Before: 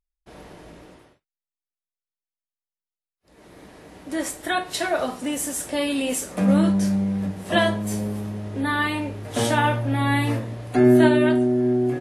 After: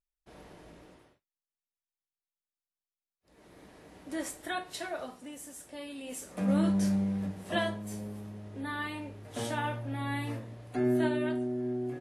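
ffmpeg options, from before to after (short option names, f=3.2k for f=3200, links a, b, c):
-af "volume=4dB,afade=t=out:st=4.09:d=1.22:silence=0.316228,afade=t=in:st=6.02:d=0.86:silence=0.237137,afade=t=out:st=6.88:d=0.93:silence=0.446684"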